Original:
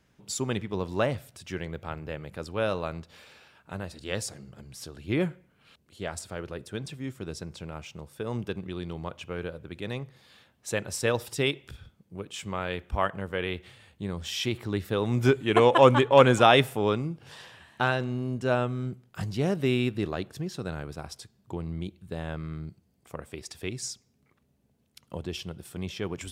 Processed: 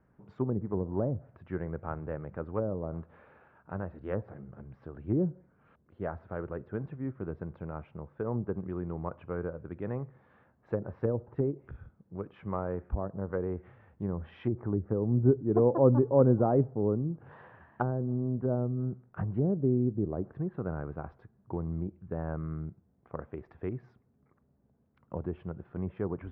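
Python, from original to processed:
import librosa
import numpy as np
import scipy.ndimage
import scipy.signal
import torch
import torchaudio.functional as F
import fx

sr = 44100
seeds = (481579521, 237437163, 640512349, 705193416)

y = scipy.signal.sosfilt(scipy.signal.butter(4, 1500.0, 'lowpass', fs=sr, output='sos'), x)
y = fx.env_lowpass_down(y, sr, base_hz=410.0, full_db=-25.5)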